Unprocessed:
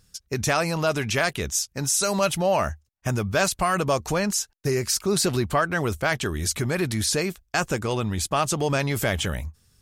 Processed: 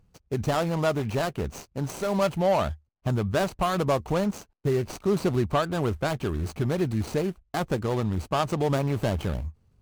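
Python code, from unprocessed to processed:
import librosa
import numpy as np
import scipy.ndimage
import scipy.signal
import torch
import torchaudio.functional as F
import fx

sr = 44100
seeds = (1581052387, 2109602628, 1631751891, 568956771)

y = scipy.ndimage.median_filter(x, 25, mode='constant')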